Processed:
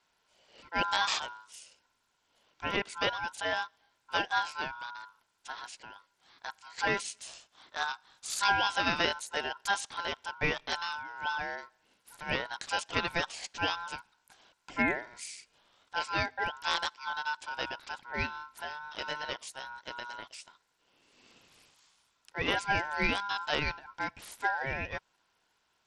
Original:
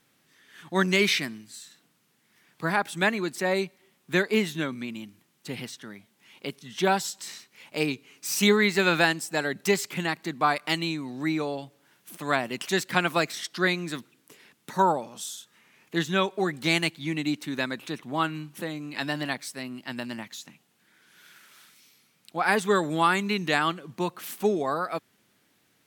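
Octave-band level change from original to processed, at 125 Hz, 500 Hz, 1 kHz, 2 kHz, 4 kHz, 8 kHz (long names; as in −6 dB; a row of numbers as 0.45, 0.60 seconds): −11.5, −11.5, −4.5, −4.5, −3.5, −7.0 decibels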